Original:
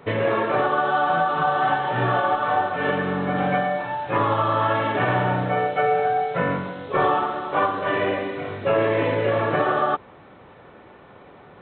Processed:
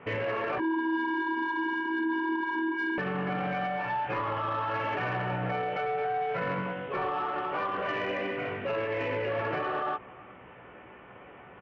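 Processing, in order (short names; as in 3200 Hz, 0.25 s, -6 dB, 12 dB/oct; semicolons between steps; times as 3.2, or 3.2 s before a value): high shelf 2300 Hz +11.5 dB; 0.58–2.98 vocoder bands 16, square 324 Hz; steep low-pass 3000 Hz 72 dB/oct; doubler 16 ms -6.5 dB; outdoor echo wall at 63 m, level -30 dB; limiter -17 dBFS, peak gain reduction 10.5 dB; soft clip -17 dBFS, distortion -23 dB; gain -5 dB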